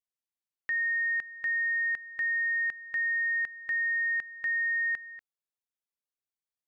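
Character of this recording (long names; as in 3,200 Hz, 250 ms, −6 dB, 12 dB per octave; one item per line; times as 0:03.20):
background noise floor −95 dBFS
spectral slope −1.5 dB per octave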